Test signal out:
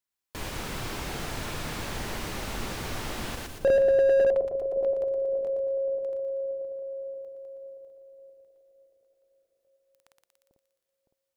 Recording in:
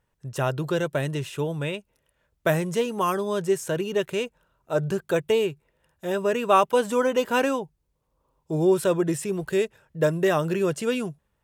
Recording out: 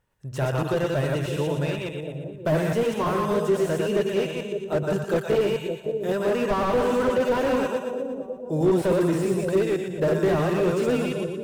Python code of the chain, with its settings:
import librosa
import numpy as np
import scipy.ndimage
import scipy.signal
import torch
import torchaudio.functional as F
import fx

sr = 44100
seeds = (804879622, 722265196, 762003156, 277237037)

y = fx.reverse_delay(x, sr, ms=105, wet_db=-2.5)
y = fx.echo_split(y, sr, split_hz=630.0, low_ms=562, high_ms=118, feedback_pct=52, wet_db=-8)
y = fx.slew_limit(y, sr, full_power_hz=65.0)